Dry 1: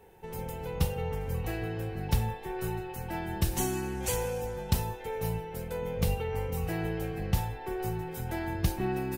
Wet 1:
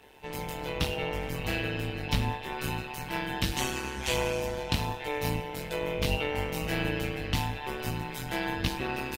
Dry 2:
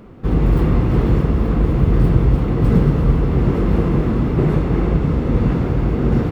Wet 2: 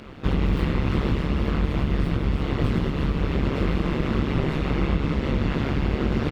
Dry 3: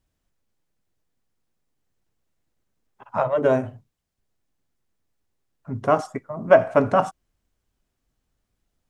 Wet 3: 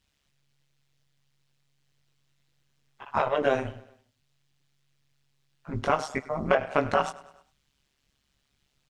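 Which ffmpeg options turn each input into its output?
-filter_complex "[0:a]equalizer=frequency=3400:width=0.51:gain=14,acrossover=split=3800[link_01][link_02];[link_02]alimiter=level_in=1dB:limit=-24dB:level=0:latency=1:release=415,volume=-1dB[link_03];[link_01][link_03]amix=inputs=2:normalize=0,acompressor=threshold=-19dB:ratio=5,asplit=2[link_04][link_05];[link_05]adelay=18,volume=-2dB[link_06];[link_04][link_06]amix=inputs=2:normalize=0,tremolo=f=140:d=0.857,aecho=1:1:101|202|303|404:0.1|0.053|0.0281|0.0149"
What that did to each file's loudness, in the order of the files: +1.5, −7.5, −6.5 LU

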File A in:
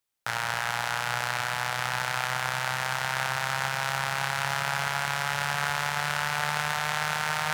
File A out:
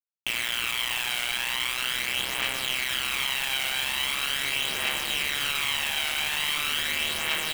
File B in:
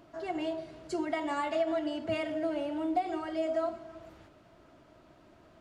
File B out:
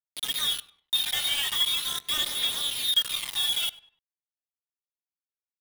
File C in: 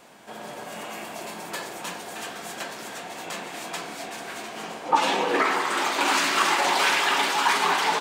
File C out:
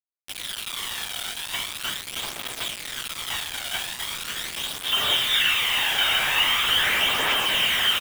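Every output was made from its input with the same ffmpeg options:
-filter_complex "[0:a]highpass=frequency=120:width=0.5412,highpass=frequency=120:width=1.3066,bandreject=frequency=1500:width=11,adynamicequalizer=threshold=0.00708:dfrequency=410:dqfactor=1.6:tfrequency=410:tqfactor=1.6:attack=5:release=100:ratio=0.375:range=3:mode=cutabove:tftype=bell,asplit=2[link_01][link_02];[link_02]alimiter=limit=-18.5dB:level=0:latency=1:release=17,volume=1dB[link_03];[link_01][link_03]amix=inputs=2:normalize=0,asoftclip=type=tanh:threshold=-16dB,lowpass=frequency=3400:width_type=q:width=0.5098,lowpass=frequency=3400:width_type=q:width=0.6013,lowpass=frequency=3400:width_type=q:width=0.9,lowpass=frequency=3400:width_type=q:width=2.563,afreqshift=-4000,aeval=exprs='sgn(val(0))*max(abs(val(0))-0.00891,0)':channel_layout=same,acrusher=bits=4:mix=0:aa=0.000001,asplit=2[link_04][link_05];[link_05]adelay=99,lowpass=frequency=3100:poles=1,volume=-18dB,asplit=2[link_06][link_07];[link_07]adelay=99,lowpass=frequency=3100:poles=1,volume=0.35,asplit=2[link_08][link_09];[link_09]adelay=99,lowpass=frequency=3100:poles=1,volume=0.35[link_10];[link_06][link_08][link_10]amix=inputs=3:normalize=0[link_11];[link_04][link_11]amix=inputs=2:normalize=0,aphaser=in_gain=1:out_gain=1:delay=1.4:decay=0.39:speed=0.41:type=triangular"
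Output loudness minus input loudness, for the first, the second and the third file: +2.5, +8.0, +2.0 LU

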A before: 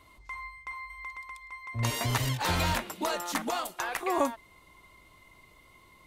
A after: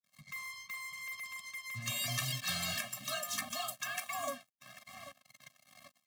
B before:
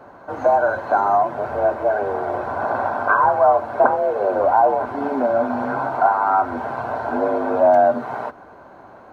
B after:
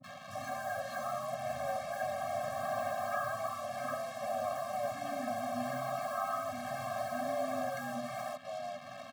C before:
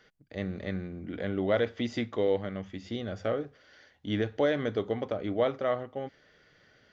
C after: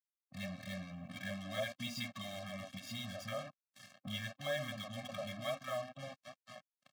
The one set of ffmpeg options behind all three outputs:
-filter_complex "[0:a]equalizer=frequency=370:width_type=o:width=2.9:gain=-15,asplit=2[link_01][link_02];[link_02]adelay=790,lowpass=frequency=2900:poles=1,volume=-20dB,asplit=2[link_03][link_04];[link_04]adelay=790,lowpass=frequency=2900:poles=1,volume=0.53,asplit=2[link_05][link_06];[link_06]adelay=790,lowpass=frequency=2900:poles=1,volume=0.53,asplit=2[link_07][link_08];[link_08]adelay=790,lowpass=frequency=2900:poles=1,volume=0.53[link_09];[link_03][link_05][link_07][link_09]amix=inputs=4:normalize=0[link_10];[link_01][link_10]amix=inputs=2:normalize=0,agate=range=-33dB:threshold=-52dB:ratio=3:detection=peak,asplit=2[link_11][link_12];[link_12]acompressor=threshold=-41dB:ratio=6,volume=-1dB[link_13];[link_11][link_13]amix=inputs=2:normalize=0,afftfilt=real='re*lt(hypot(re,im),0.282)':imag='im*lt(hypot(re,im),0.282)':win_size=1024:overlap=0.75,acrossover=split=250|1100[link_14][link_15][link_16];[link_16]adelay=30[link_17];[link_15]adelay=70[link_18];[link_14][link_18][link_17]amix=inputs=3:normalize=0,acompressor=mode=upward:threshold=-38dB:ratio=2.5,acrusher=bits=6:mix=0:aa=0.5,highpass=frequency=130:width=0.5412,highpass=frequency=130:width=1.3066,afftfilt=real='re*eq(mod(floor(b*sr/1024/260),2),0)':imag='im*eq(mod(floor(b*sr/1024/260),2),0)':win_size=1024:overlap=0.75"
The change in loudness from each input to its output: −6.0, −18.0, −11.0 LU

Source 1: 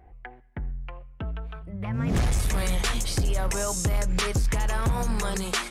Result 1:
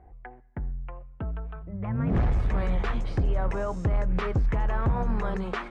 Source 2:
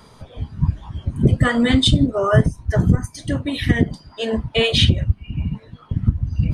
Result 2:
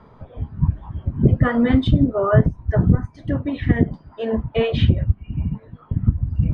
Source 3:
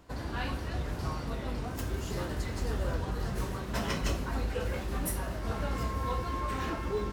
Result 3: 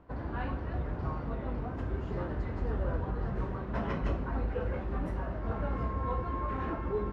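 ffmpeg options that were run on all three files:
-af "lowpass=1500"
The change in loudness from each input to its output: −1.5, −1.0, −0.5 LU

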